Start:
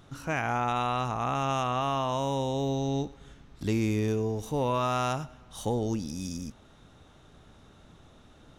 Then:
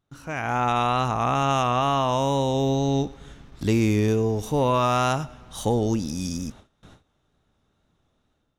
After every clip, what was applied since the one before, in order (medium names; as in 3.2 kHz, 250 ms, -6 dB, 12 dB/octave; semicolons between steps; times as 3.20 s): gate with hold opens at -42 dBFS; level rider gain up to 9.5 dB; vibrato 2.2 Hz 28 cents; trim -3 dB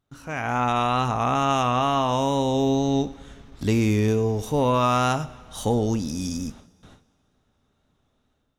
two-slope reverb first 0.25 s, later 2.1 s, from -19 dB, DRR 12.5 dB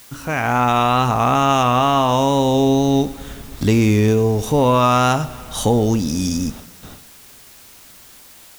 in parallel at +1 dB: compression, threshold -30 dBFS, peak gain reduction 13 dB; on the sum: word length cut 8-bit, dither triangular; trim +4 dB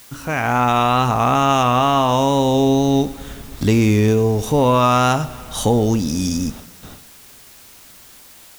no audible change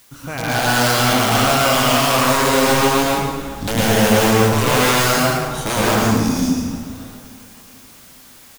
integer overflow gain 9.5 dB; feedback delay 418 ms, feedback 54%, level -23 dB; plate-style reverb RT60 1.5 s, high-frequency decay 0.65×, pre-delay 95 ms, DRR -7 dB; trim -6.5 dB